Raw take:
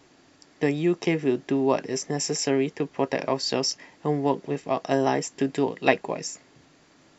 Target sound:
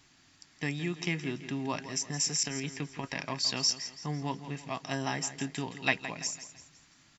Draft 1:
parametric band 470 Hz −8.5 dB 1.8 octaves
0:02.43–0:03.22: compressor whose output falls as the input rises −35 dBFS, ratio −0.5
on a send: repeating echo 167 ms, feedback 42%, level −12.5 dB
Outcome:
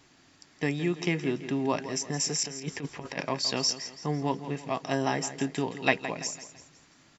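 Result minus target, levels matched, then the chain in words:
500 Hz band +5.5 dB
parametric band 470 Hz −19 dB 1.8 octaves
0:02.43–0:03.22: compressor whose output falls as the input rises −35 dBFS, ratio −0.5
on a send: repeating echo 167 ms, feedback 42%, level −12.5 dB

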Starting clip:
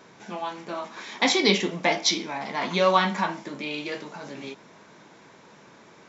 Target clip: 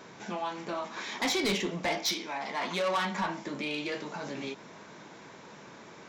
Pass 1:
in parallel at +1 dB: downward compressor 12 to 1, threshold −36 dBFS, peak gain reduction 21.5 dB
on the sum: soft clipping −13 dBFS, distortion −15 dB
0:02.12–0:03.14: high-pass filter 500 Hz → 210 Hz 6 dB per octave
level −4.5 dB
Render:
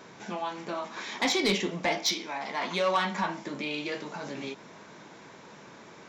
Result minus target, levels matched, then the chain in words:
soft clipping: distortion −6 dB
in parallel at +1 dB: downward compressor 12 to 1, threshold −36 dBFS, peak gain reduction 21.5 dB
on the sum: soft clipping −19.5 dBFS, distortion −9 dB
0:02.12–0:03.14: high-pass filter 500 Hz → 210 Hz 6 dB per octave
level −4.5 dB

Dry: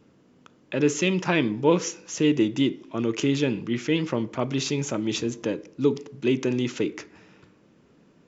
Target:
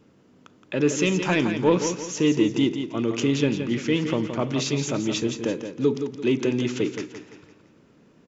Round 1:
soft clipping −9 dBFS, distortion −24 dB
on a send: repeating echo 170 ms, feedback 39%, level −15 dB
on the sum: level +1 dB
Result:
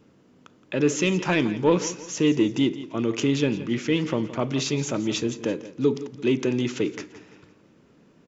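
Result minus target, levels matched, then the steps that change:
echo-to-direct −7 dB
change: repeating echo 170 ms, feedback 39%, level −8 dB

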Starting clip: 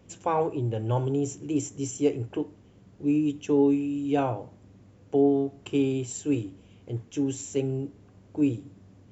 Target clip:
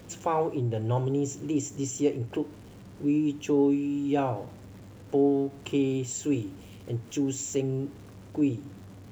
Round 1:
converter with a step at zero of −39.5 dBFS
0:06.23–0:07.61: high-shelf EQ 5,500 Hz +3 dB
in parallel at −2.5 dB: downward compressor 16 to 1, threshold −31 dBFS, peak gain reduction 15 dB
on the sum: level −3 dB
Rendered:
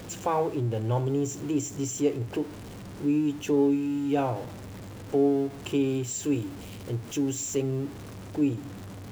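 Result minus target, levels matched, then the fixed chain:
converter with a step at zero: distortion +9 dB
converter with a step at zero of −49 dBFS
0:06.23–0:07.61: high-shelf EQ 5,500 Hz +3 dB
in parallel at −2.5 dB: downward compressor 16 to 1, threshold −31 dBFS, peak gain reduction 15 dB
on the sum: level −3 dB

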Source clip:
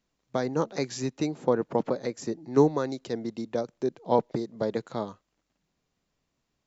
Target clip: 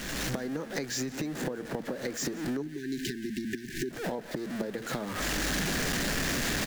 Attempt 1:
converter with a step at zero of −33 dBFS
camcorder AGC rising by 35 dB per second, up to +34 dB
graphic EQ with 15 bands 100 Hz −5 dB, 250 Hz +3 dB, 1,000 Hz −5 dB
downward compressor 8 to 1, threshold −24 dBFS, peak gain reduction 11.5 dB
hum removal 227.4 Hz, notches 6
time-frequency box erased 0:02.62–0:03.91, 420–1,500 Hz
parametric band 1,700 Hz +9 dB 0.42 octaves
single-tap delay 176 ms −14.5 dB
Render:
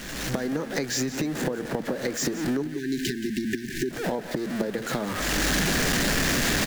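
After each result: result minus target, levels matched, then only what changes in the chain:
downward compressor: peak gain reduction −6 dB; echo-to-direct +6.5 dB
change: downward compressor 8 to 1, threshold −31 dBFS, peak gain reduction 17.5 dB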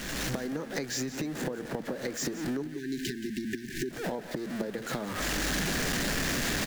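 echo-to-direct +6.5 dB
change: single-tap delay 176 ms −21 dB

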